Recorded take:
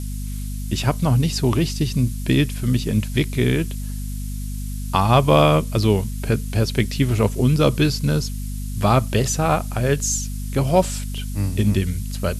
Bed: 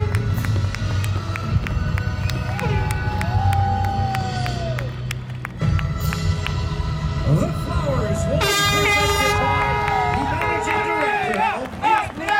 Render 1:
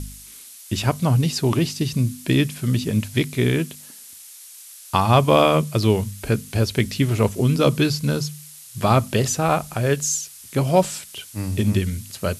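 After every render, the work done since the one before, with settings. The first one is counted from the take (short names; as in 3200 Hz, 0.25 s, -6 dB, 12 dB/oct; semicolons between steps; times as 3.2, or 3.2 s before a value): de-hum 50 Hz, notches 5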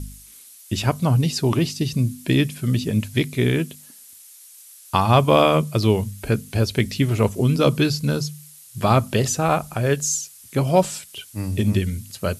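denoiser 6 dB, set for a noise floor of -43 dBFS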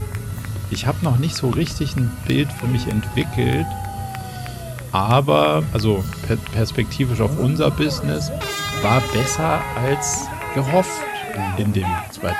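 add bed -7 dB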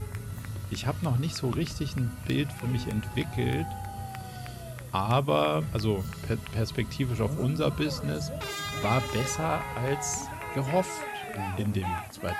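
gain -9.5 dB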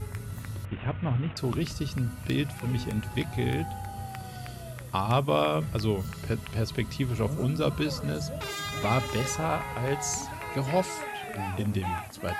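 0.65–1.37 CVSD 16 kbps; 9.99–10.94 bell 4400 Hz +7 dB 0.38 oct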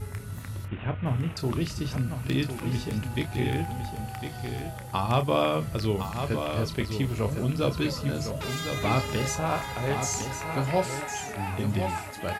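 doubler 30 ms -10 dB; echo 1.056 s -7.5 dB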